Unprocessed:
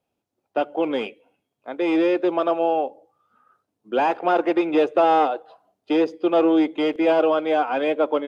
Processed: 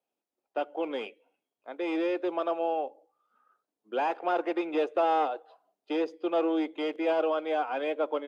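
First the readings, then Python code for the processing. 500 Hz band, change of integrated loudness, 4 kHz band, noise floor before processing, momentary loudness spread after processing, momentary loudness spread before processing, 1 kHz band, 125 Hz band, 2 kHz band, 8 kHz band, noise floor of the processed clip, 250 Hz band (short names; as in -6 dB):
-8.5 dB, -9.0 dB, -8.0 dB, -80 dBFS, 9 LU, 9 LU, -8.0 dB, under -15 dB, -8.0 dB, n/a, under -85 dBFS, -10.5 dB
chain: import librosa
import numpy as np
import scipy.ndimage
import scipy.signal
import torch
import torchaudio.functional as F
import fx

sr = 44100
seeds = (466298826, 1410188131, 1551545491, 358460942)

y = scipy.signal.sosfilt(scipy.signal.butter(2, 310.0, 'highpass', fs=sr, output='sos'), x)
y = y * librosa.db_to_amplitude(-8.0)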